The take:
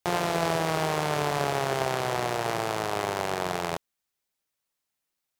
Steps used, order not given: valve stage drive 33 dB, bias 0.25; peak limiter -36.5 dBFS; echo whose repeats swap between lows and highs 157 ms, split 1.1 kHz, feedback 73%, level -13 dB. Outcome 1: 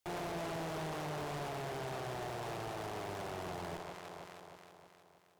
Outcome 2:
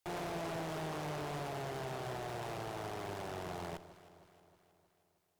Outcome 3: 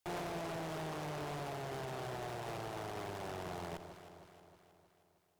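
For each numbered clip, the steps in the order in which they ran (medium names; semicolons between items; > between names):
echo whose repeats swap between lows and highs > valve stage > peak limiter; valve stage > peak limiter > echo whose repeats swap between lows and highs; valve stage > echo whose repeats swap between lows and highs > peak limiter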